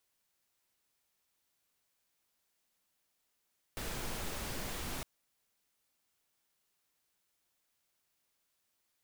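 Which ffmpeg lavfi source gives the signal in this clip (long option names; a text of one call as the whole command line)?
ffmpeg -f lavfi -i "anoisesrc=color=pink:amplitude=0.0543:duration=1.26:sample_rate=44100:seed=1" out.wav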